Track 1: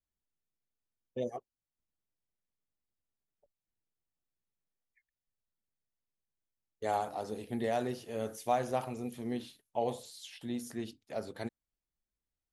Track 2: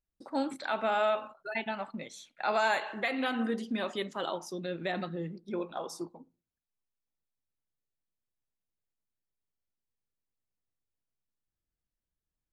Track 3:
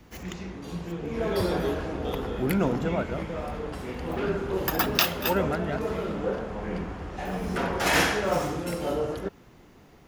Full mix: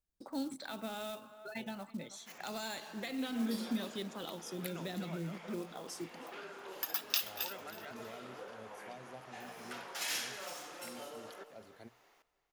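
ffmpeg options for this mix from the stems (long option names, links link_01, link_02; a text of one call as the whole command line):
ffmpeg -i stem1.wav -i stem2.wav -i stem3.wav -filter_complex "[0:a]bandreject=frequency=60:width_type=h:width=6,bandreject=frequency=120:width_type=h:width=6,adelay=400,volume=-14.5dB[link_01];[1:a]equalizer=frequency=2500:width=1.5:gain=-5,acrusher=bits=6:mode=log:mix=0:aa=0.000001,volume=-0.5dB,asplit=2[link_02][link_03];[link_03]volume=-22dB[link_04];[2:a]highpass=750,adelay=2150,volume=-7dB,asplit=2[link_05][link_06];[link_06]volume=-16dB[link_07];[link_04][link_07]amix=inputs=2:normalize=0,aecho=0:1:321|642|963|1284:1|0.25|0.0625|0.0156[link_08];[link_01][link_02][link_05][link_08]amix=inputs=4:normalize=0,acrossover=split=290|3000[link_09][link_10][link_11];[link_10]acompressor=threshold=-47dB:ratio=4[link_12];[link_09][link_12][link_11]amix=inputs=3:normalize=0" out.wav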